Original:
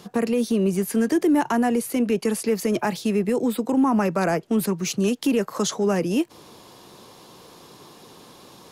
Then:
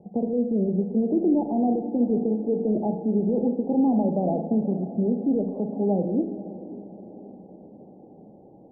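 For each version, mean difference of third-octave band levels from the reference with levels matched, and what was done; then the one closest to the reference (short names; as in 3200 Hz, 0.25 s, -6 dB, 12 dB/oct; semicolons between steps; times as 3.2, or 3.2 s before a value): 13.5 dB: rippled Chebyshev low-pass 830 Hz, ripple 3 dB; diffused feedback echo 0.537 s, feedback 57%, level -14.5 dB; Schroeder reverb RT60 0.93 s, combs from 33 ms, DRR 6 dB; gain -1.5 dB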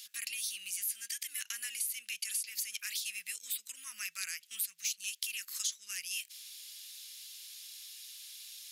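20.0 dB: inverse Chebyshev high-pass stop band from 890 Hz, stop band 50 dB; high shelf 7000 Hz +9 dB; compressor 4:1, threshold -34 dBFS, peak gain reduction 12.5 dB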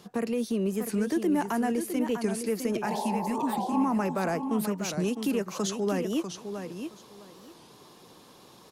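3.5 dB: spectral repair 2.89–3.8, 370–1100 Hz both; on a send: feedback echo 0.657 s, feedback 18%, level -8 dB; on the sum: record warp 45 rpm, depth 160 cents; gain -7 dB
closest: third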